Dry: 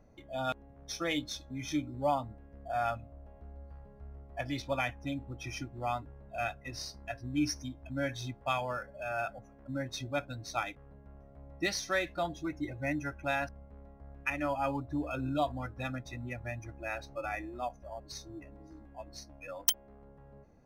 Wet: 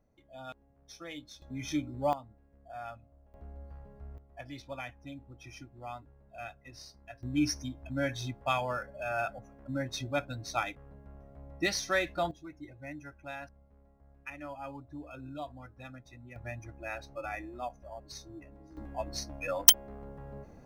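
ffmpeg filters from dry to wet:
ffmpeg -i in.wav -af "asetnsamples=nb_out_samples=441:pad=0,asendcmd='1.42 volume volume 0.5dB;2.13 volume volume -10.5dB;3.34 volume volume 1.5dB;4.18 volume volume -8.5dB;7.23 volume volume 2dB;12.31 volume volume -10dB;16.36 volume volume -1.5dB;18.77 volume volume 9.5dB',volume=-11dB" out.wav

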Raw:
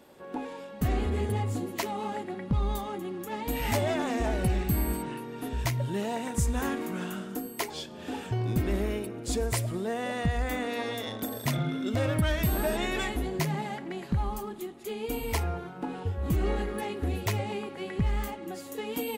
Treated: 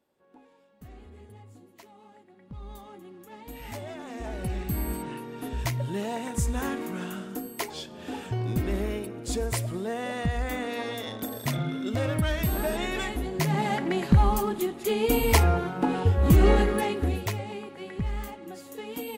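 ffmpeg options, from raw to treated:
ffmpeg -i in.wav -af "volume=9.5dB,afade=type=in:start_time=2.33:duration=0.52:silence=0.354813,afade=type=in:start_time=4.02:duration=1.13:silence=0.281838,afade=type=in:start_time=13.35:duration=0.44:silence=0.334965,afade=type=out:start_time=16.54:duration=0.82:silence=0.237137" out.wav

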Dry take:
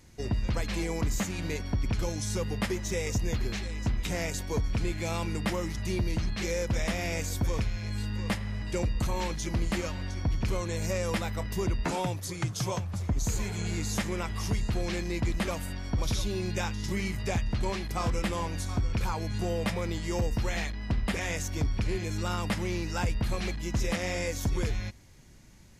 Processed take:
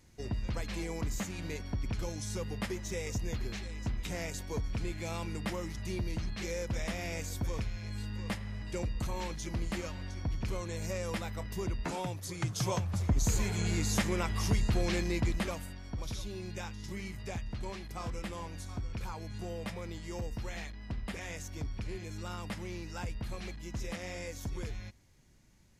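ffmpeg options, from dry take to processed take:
ffmpeg -i in.wav -af "volume=0.5dB,afade=type=in:start_time=12.14:duration=0.76:silence=0.473151,afade=type=out:start_time=15.03:duration=0.72:silence=0.316228" out.wav

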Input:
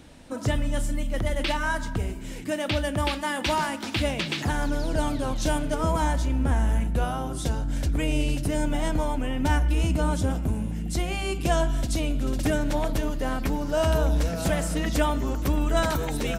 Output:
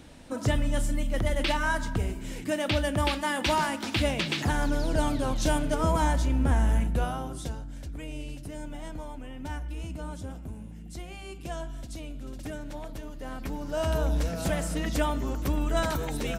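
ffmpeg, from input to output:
ffmpeg -i in.wav -af "volume=9dB,afade=type=out:start_time=6.78:duration=0.94:silence=0.237137,afade=type=in:start_time=13.1:duration=1.02:silence=0.334965" out.wav

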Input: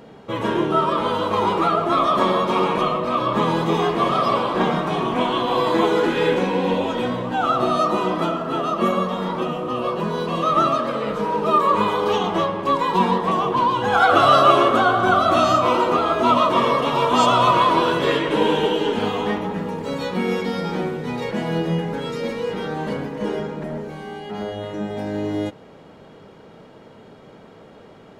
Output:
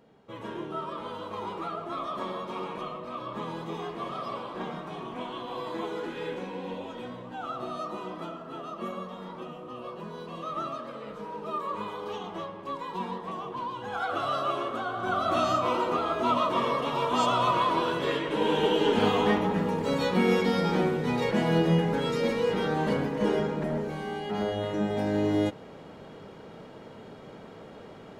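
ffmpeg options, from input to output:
ffmpeg -i in.wav -af "volume=-1dB,afade=type=in:start_time=14.9:duration=0.46:silence=0.446684,afade=type=in:start_time=18.38:duration=0.68:silence=0.398107" out.wav

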